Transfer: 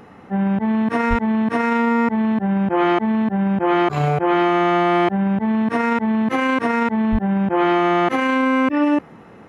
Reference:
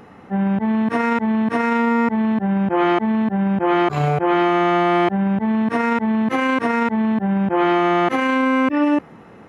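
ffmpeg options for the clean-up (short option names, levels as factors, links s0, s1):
-filter_complex "[0:a]asplit=3[s0][s1][s2];[s0]afade=t=out:st=1.09:d=0.02[s3];[s1]highpass=f=140:w=0.5412,highpass=f=140:w=1.3066,afade=t=in:st=1.09:d=0.02,afade=t=out:st=1.21:d=0.02[s4];[s2]afade=t=in:st=1.21:d=0.02[s5];[s3][s4][s5]amix=inputs=3:normalize=0,asplit=3[s6][s7][s8];[s6]afade=t=out:st=7.11:d=0.02[s9];[s7]highpass=f=140:w=0.5412,highpass=f=140:w=1.3066,afade=t=in:st=7.11:d=0.02,afade=t=out:st=7.23:d=0.02[s10];[s8]afade=t=in:st=7.23:d=0.02[s11];[s9][s10][s11]amix=inputs=3:normalize=0"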